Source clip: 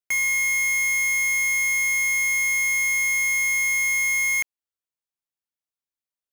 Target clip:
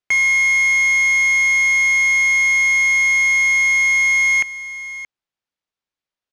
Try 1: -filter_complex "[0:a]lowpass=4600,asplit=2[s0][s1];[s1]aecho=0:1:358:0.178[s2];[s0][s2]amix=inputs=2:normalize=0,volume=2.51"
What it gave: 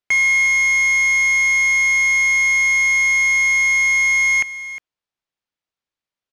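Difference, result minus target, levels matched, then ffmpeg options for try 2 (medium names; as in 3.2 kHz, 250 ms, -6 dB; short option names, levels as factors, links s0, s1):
echo 267 ms early
-filter_complex "[0:a]lowpass=4600,asplit=2[s0][s1];[s1]aecho=0:1:625:0.178[s2];[s0][s2]amix=inputs=2:normalize=0,volume=2.51"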